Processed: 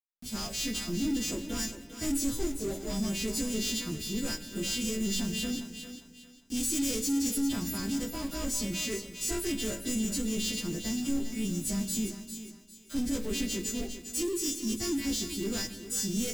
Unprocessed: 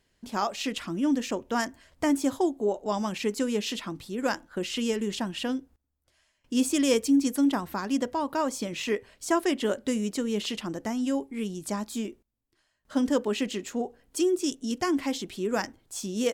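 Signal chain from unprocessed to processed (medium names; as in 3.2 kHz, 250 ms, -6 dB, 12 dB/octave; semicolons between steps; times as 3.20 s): partials quantised in pitch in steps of 2 st; waveshaping leveller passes 5; bit crusher 5-bit; amplifier tone stack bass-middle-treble 10-0-1; thinning echo 402 ms, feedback 32%, high-pass 390 Hz, level -9 dB; on a send at -10 dB: reverberation RT60 1.3 s, pre-delay 3 ms; on the sum: trim +1.5 dB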